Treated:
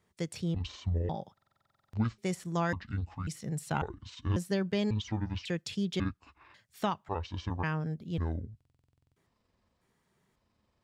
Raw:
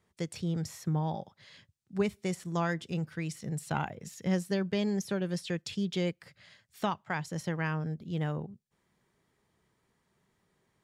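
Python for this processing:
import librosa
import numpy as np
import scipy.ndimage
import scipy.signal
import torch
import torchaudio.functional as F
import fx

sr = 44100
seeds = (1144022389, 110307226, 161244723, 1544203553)

y = fx.pitch_trill(x, sr, semitones=-10.5, every_ms=545)
y = fx.buffer_glitch(y, sr, at_s=(1.33, 8.56), block=2048, repeats=12)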